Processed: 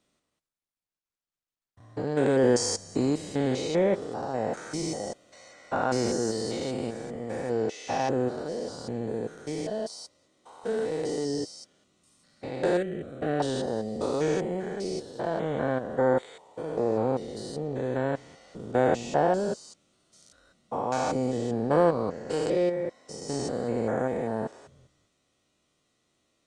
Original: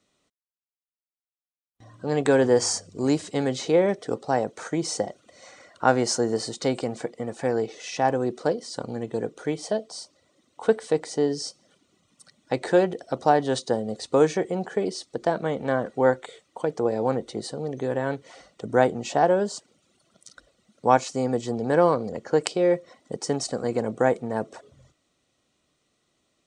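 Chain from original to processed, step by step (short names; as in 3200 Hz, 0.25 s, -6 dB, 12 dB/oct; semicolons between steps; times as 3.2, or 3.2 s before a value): stepped spectrum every 0.2 s; 12.77–13.4 fixed phaser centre 2200 Hz, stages 4; Opus 24 kbps 48000 Hz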